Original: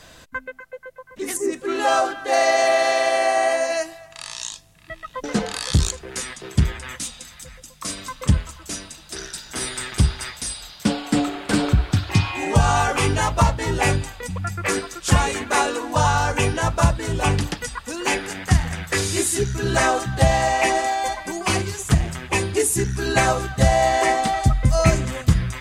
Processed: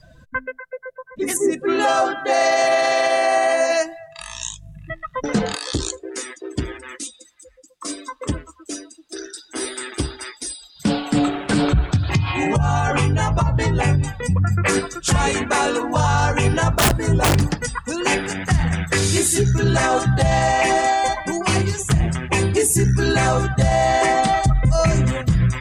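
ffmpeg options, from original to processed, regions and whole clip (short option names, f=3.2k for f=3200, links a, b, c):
-filter_complex "[0:a]asettb=1/sr,asplit=3[a][b][c];[a]atrim=end=4.214[d];[b]atrim=start=4.21:end=4.93,asetpts=PTS-STARTPTS,afade=t=in:d=0.004:c=qsin,afade=t=out:st=0.716:d=0.004:c=qsin,equalizer=f=4.6k:t=o:w=0.39:g=-9,acompressor=mode=upward:threshold=-38dB:ratio=2.5:attack=3.2:release=140:knee=2.83:detection=peak,aeval=exprs='val(0)+0.00355*(sin(2*PI*50*n/s)+sin(2*PI*2*50*n/s)/2+sin(2*PI*3*50*n/s)/3+sin(2*PI*4*50*n/s)/4+sin(2*PI*5*50*n/s)/5)':c=same[e];[c]atrim=start=4.926[f];[d][e]acrossfade=d=0.004:c1=hsin:c2=qsin[g];[g][f]acrossfade=d=0.004:c1=qsin:c2=hsin,asettb=1/sr,asplit=3[h][i][j];[h]atrim=end=5.554[k];[i]atrim=start=5.55:end=10.76,asetpts=PTS-STARTPTS,afade=t=in:d=0.004:c=qsin,afade=t=out:st=5.206:d=0.004:c=qsin,lowshelf=f=230:t=q:w=3:g=-10,flanger=delay=1.3:depth=6.5:regen=87:speed=1.2:shape=triangular[l];[j]atrim=start=10.756[m];[k][l]acrossfade=d=0.004:c1=hsin:c2=qsin[n];[n][m]acrossfade=d=0.004:c1=qsin:c2=hsin,asettb=1/sr,asplit=3[o][p][q];[o]atrim=end=11.964[r];[p]atrim=start=11.96:end=14.63,asetpts=PTS-STARTPTS,afade=t=in:d=0.004:c=qsin,afade=t=out:st=2.666:d=0.004:c=qsin,equalizer=f=110:t=o:w=1.7:g=5.5,acompressor=threshold=-20dB:ratio=16:attack=3.2:release=140:knee=1:detection=peak,asplit=2[s][t];[t]adelay=14,volume=-12dB[u];[s][u]amix=inputs=2:normalize=0,atrim=end_sample=117747[v];[q]atrim=start=14.626[w];[r][v]acrossfade=d=0.004:c1=hsin:c2=qsin[x];[x][w]acrossfade=d=0.004:c1=qsin:c2=hsin,asettb=1/sr,asplit=3[y][z][aa];[y]atrim=end=16.764[ab];[z]atrim=start=16.76:end=17.65,asetpts=PTS-STARTPTS,afade=t=in:d=0.004:c=qsin,afade=t=out:st=0.886:d=0.004:c=qsin,equalizer=f=3.1k:t=o:w=0.76:g=-6,aeval=exprs='(mod(4.22*val(0)+1,2)-1)/4.22':c=same[ac];[aa]atrim=start=17.646[ad];[ab][ac]acrossfade=d=0.004:c1=hsin:c2=qsin[ae];[ae][ad]acrossfade=d=0.004:c1=qsin:c2=hsin,afftdn=nr=21:nf=-40,equalizer=f=140:w=1.2:g=6.5,alimiter=level_in=12dB:limit=-1dB:release=50:level=0:latency=1,volume=-7.5dB"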